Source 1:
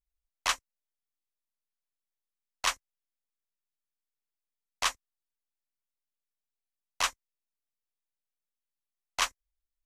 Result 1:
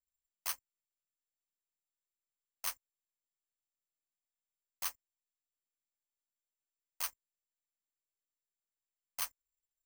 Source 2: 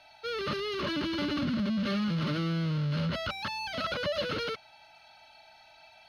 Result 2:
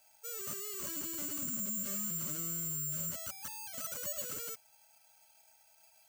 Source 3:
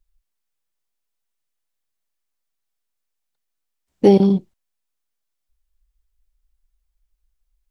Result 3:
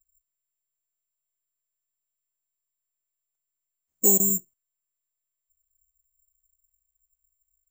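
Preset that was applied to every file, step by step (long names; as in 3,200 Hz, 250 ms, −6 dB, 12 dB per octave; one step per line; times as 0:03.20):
bad sample-rate conversion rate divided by 6×, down filtered, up zero stuff
level −15.5 dB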